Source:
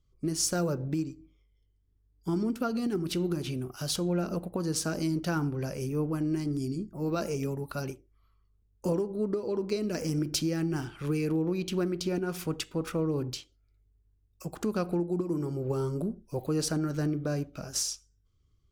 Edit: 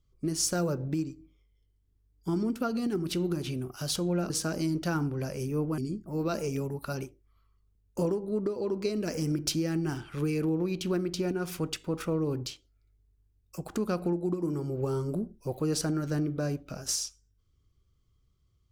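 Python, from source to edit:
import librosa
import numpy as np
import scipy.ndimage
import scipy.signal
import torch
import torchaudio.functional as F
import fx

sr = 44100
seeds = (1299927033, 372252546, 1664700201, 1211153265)

y = fx.edit(x, sr, fx.cut(start_s=4.3, length_s=0.41),
    fx.cut(start_s=6.19, length_s=0.46), tone=tone)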